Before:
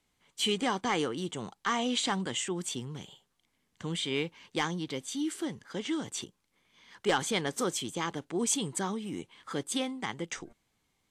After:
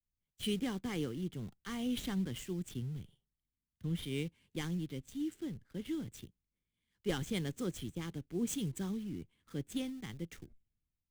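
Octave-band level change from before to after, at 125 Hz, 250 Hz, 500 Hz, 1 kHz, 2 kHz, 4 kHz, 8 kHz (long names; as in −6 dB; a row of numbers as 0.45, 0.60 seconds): +1.0, −3.0, −8.5, −17.5, −12.5, −12.0, −13.5 decibels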